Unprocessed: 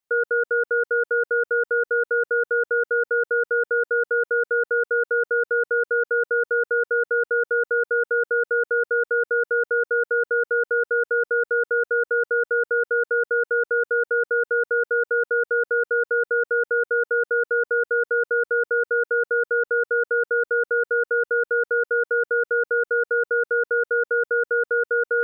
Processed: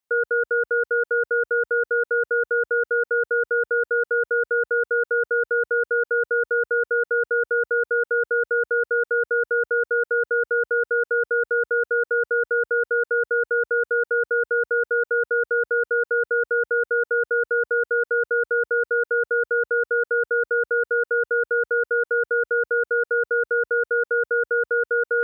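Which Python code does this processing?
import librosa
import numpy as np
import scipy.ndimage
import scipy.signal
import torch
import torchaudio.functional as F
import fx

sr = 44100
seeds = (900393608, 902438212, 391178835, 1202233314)

y = scipy.signal.sosfilt(scipy.signal.butter(4, 47.0, 'highpass', fs=sr, output='sos'), x)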